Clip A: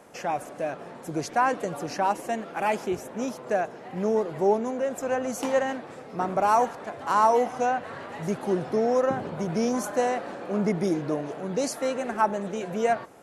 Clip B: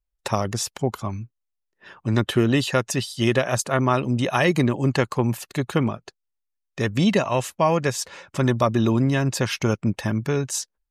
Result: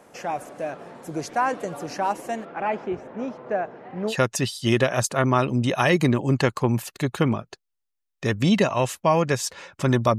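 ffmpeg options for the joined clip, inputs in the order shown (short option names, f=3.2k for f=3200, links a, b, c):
-filter_complex "[0:a]asettb=1/sr,asplit=3[a][b][c];[a]atrim=end=2.454[d];[b]atrim=start=2.45:end=4.15,asetpts=PTS-STARTPTS,afade=t=in:d=0.004:c=qsin,afade=t=out:st=1.696:d=0.004:c=qsin,lowpass=2.4k[e];[c]atrim=start=4.146[f];[d][e]acrossfade=d=0.004:c1=hsin:c2=qsin[g];[g][f]acrossfade=d=0.004:c1=qsin:c2=hsin,apad=whole_dur=10.18,atrim=end=10.18,atrim=end=4.15,asetpts=PTS-STARTPTS[h];[1:a]atrim=start=2.62:end=8.73,asetpts=PTS-STARTPTS[i];[h][i]acrossfade=d=0.08:c1=tri:c2=tri"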